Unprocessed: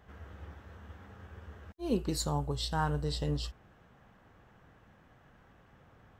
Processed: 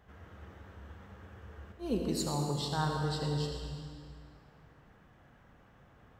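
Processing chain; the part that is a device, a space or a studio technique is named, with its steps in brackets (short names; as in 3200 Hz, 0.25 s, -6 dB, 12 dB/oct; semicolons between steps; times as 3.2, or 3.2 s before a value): stairwell (reverb RT60 2.2 s, pre-delay 65 ms, DRR 1.5 dB); gain -2.5 dB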